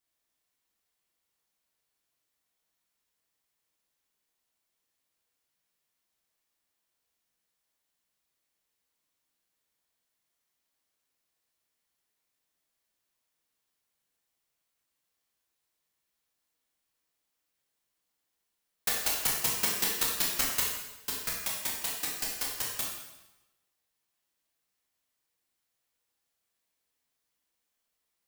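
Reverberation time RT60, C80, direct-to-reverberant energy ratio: 1.0 s, 4.0 dB, −4.0 dB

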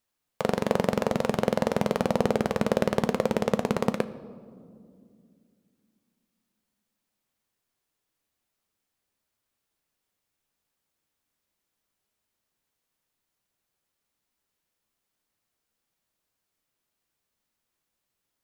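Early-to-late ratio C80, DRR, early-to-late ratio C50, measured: 16.5 dB, 11.0 dB, 15.5 dB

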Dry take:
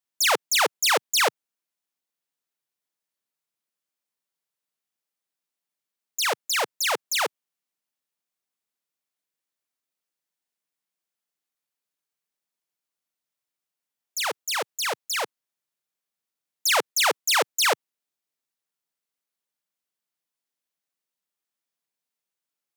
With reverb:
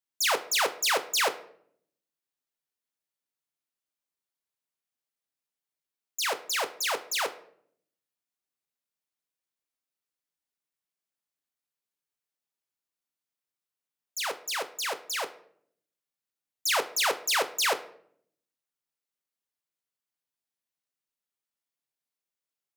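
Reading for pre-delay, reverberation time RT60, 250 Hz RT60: 7 ms, 0.65 s, 1.0 s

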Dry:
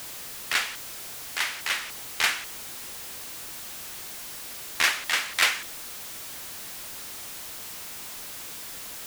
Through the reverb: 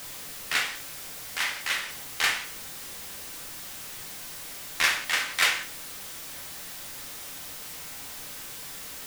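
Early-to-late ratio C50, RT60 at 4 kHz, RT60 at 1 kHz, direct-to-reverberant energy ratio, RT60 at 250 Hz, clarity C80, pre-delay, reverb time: 10.5 dB, 0.35 s, 0.45 s, 2.0 dB, 0.75 s, 15.5 dB, 4 ms, 0.50 s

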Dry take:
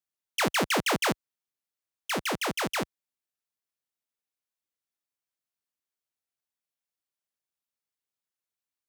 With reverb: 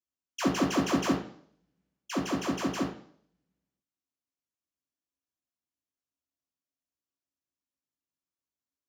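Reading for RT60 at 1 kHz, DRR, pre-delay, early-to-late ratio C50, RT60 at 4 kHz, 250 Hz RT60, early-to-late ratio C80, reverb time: 0.55 s, −6.5 dB, 3 ms, 6.5 dB, 0.60 s, 0.60 s, 10.0 dB, 0.55 s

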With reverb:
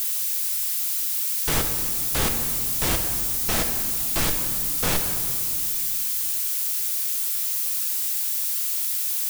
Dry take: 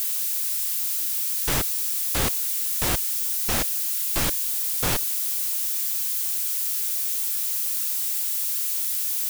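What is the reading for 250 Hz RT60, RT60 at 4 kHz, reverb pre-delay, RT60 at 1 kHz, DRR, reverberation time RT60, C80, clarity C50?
3.5 s, 1.2 s, 5 ms, 2.1 s, 4.0 dB, 2.1 s, 7.5 dB, 6.0 dB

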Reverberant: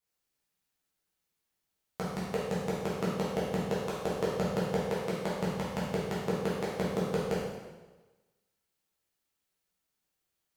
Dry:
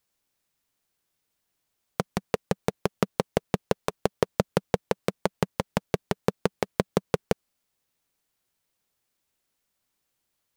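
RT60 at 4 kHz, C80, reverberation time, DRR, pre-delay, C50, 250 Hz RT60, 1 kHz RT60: 1.1 s, 2.5 dB, 1.2 s, −8.5 dB, 4 ms, −0.5 dB, 1.2 s, 1.2 s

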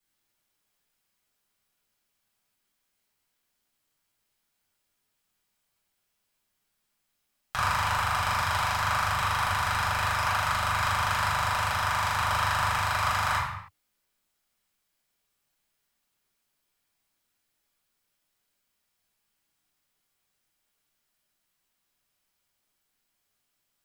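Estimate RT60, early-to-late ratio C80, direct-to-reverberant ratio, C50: non-exponential decay, 5.0 dB, −8.0 dB, 2.5 dB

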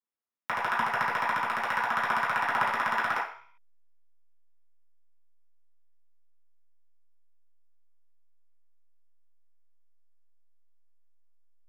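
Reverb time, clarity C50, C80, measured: 0.50 s, 4.5 dB, 10.0 dB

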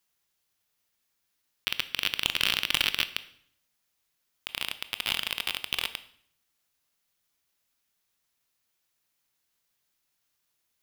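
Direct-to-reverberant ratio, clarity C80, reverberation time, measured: 12.0 dB, 18.0 dB, 0.65 s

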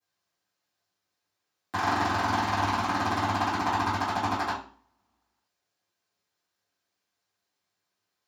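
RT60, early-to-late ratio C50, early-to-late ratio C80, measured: 0.45 s, 4.5 dB, 10.5 dB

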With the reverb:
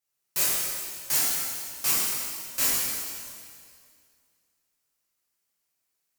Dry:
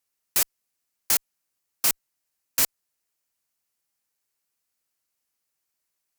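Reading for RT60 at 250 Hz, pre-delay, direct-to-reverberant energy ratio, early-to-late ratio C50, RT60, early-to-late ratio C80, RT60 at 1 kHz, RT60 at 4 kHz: 2.2 s, 4 ms, −9.5 dB, −3.5 dB, 2.1 s, −1.0 dB, 2.1 s, 2.1 s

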